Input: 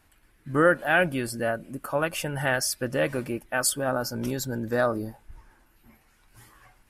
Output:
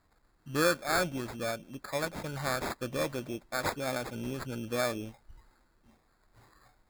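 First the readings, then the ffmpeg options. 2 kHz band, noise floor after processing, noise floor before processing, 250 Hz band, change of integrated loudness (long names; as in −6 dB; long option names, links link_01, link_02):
−8.5 dB, −70 dBFS, −63 dBFS, −7.0 dB, −7.0 dB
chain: -af "acrusher=samples=15:mix=1:aa=0.000001,volume=-7dB"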